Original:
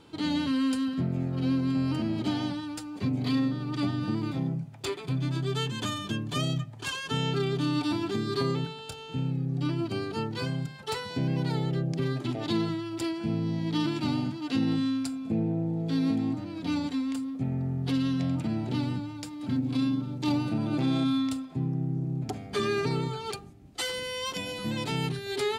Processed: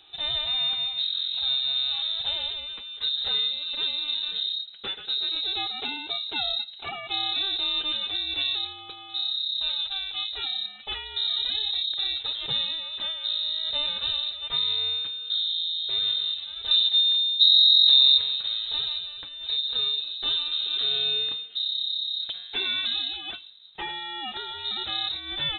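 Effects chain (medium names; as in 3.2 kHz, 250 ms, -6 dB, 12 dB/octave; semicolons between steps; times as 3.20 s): 16.71–18.18 s: tilt EQ -4.5 dB/octave; frequency inversion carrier 3.9 kHz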